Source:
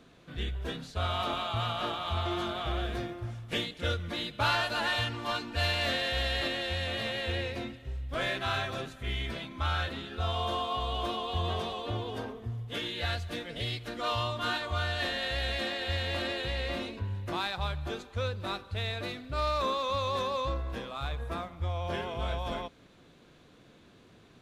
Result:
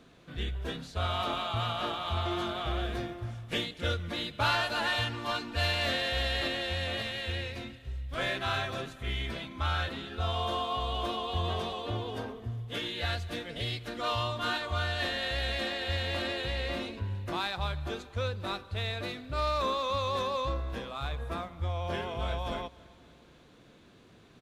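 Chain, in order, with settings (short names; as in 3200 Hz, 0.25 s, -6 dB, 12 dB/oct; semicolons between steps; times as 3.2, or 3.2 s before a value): 7.02–8.18 bell 500 Hz -6 dB 2.8 oct; on a send: feedback echo 0.276 s, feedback 54%, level -23.5 dB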